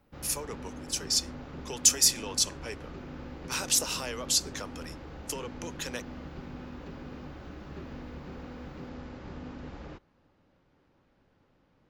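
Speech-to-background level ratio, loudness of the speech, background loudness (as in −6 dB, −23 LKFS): 16.0 dB, −27.5 LKFS, −43.5 LKFS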